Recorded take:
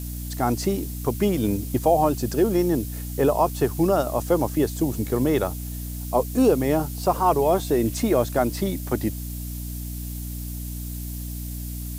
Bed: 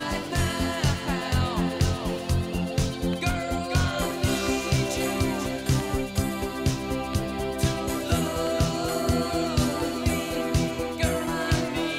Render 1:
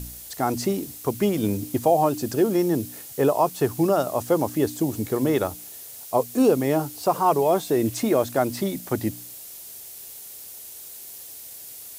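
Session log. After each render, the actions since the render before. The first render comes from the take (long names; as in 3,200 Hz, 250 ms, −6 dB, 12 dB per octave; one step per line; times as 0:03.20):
hum removal 60 Hz, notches 5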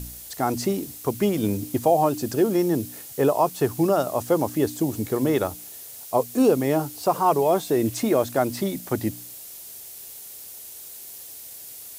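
no processing that can be heard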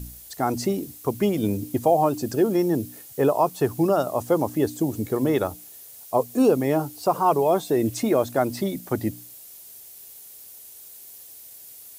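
broadband denoise 6 dB, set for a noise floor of −41 dBFS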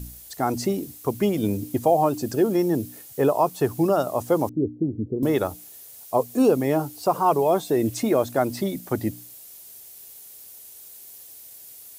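0:04.49–0:05.23: inverse Chebyshev low-pass filter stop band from 1,800 Hz, stop band 70 dB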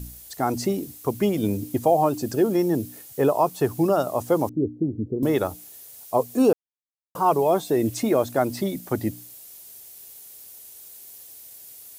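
0:06.53–0:07.15: silence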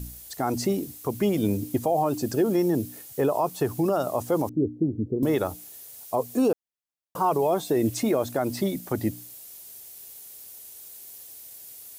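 brickwall limiter −14.5 dBFS, peak gain reduction 6.5 dB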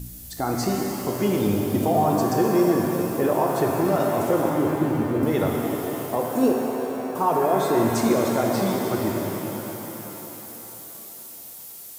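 reverb with rising layers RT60 3.9 s, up +7 semitones, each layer −8 dB, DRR −1 dB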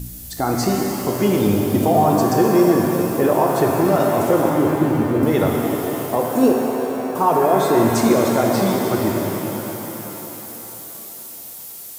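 level +5 dB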